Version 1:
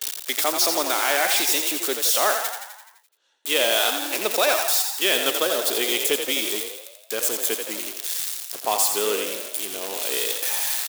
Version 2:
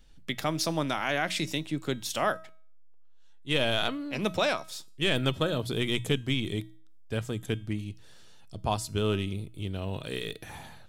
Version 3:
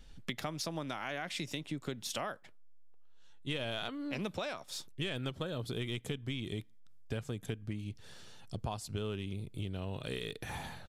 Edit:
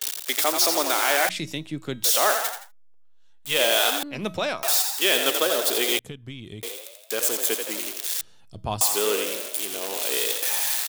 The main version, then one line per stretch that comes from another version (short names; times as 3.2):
1
1.29–2.04 from 2
2.6–3.49 from 2, crossfade 0.24 s
4.03–4.63 from 2
5.99–6.63 from 3
8.21–8.81 from 2